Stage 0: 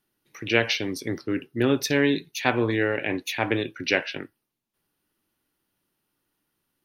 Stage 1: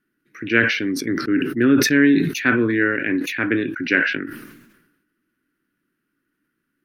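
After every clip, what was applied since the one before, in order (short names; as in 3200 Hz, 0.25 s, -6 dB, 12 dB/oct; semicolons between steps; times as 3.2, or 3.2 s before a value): EQ curve 100 Hz 0 dB, 280 Hz +12 dB, 840 Hz -11 dB, 1500 Hz +13 dB, 3500 Hz -5 dB; sustainer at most 54 dB/s; gain -2.5 dB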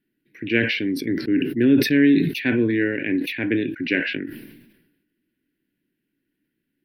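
fixed phaser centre 3000 Hz, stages 4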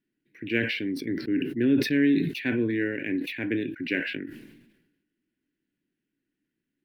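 median filter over 3 samples; gain -6 dB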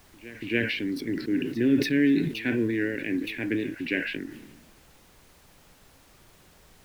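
vibrato 5.6 Hz 39 cents; added noise pink -56 dBFS; pre-echo 0.285 s -18 dB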